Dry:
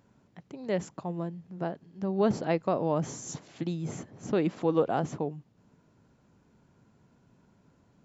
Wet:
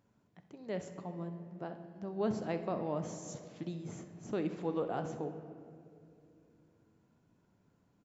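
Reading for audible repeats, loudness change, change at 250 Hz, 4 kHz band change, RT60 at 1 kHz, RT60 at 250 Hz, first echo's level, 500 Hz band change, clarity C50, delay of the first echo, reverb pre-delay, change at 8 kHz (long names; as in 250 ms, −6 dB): 1, −8.0 dB, −7.5 dB, −8.5 dB, 2.0 s, 3.7 s, −16.0 dB, −8.0 dB, 8.5 dB, 65 ms, 3 ms, can't be measured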